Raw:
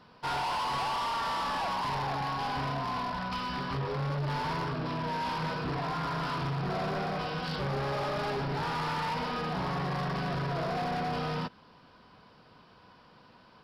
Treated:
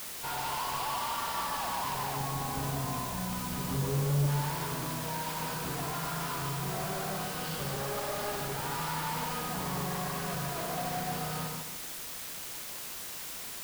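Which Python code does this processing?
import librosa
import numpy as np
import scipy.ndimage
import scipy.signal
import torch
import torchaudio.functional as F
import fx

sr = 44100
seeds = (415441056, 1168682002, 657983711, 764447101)

y = fx.tilt_shelf(x, sr, db=7.0, hz=730.0, at=(2.16, 4.27))
y = fx.echo_feedback(y, sr, ms=147, feedback_pct=33, wet_db=-3.5)
y = fx.quant_dither(y, sr, seeds[0], bits=6, dither='triangular')
y = y * 10.0 ** (-5.0 / 20.0)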